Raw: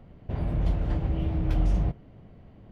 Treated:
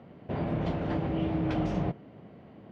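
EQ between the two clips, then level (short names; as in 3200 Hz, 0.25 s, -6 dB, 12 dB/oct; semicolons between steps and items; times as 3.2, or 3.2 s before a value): HPF 190 Hz 12 dB/oct; air absorption 120 m; +5.5 dB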